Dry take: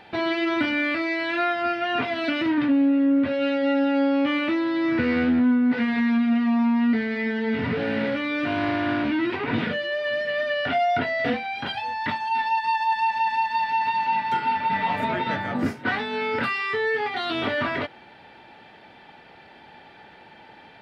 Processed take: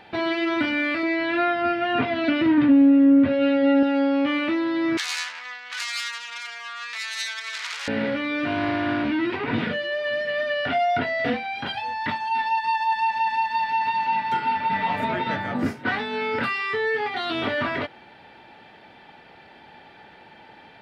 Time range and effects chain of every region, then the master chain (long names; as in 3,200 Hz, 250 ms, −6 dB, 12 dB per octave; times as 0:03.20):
0:01.03–0:03.83: low-pass filter 4,500 Hz + low-shelf EQ 410 Hz +7 dB
0:04.97–0:07.88: phase distortion by the signal itself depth 0.42 ms + high-pass filter 1,100 Hz 24 dB per octave + high-shelf EQ 4,000 Hz +9 dB
whole clip: no processing